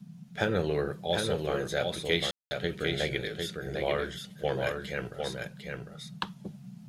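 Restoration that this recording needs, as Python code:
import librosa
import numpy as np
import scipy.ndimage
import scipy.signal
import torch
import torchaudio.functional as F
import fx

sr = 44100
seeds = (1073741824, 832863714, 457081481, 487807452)

y = fx.fix_ambience(x, sr, seeds[0], print_start_s=6.33, print_end_s=6.83, start_s=2.31, end_s=2.51)
y = fx.noise_reduce(y, sr, print_start_s=6.33, print_end_s=6.83, reduce_db=29.0)
y = fx.fix_echo_inverse(y, sr, delay_ms=751, level_db=-4.5)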